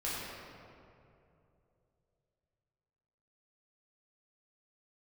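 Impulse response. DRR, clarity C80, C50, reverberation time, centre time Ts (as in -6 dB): -9.0 dB, -1.5 dB, -3.0 dB, 2.8 s, 0.155 s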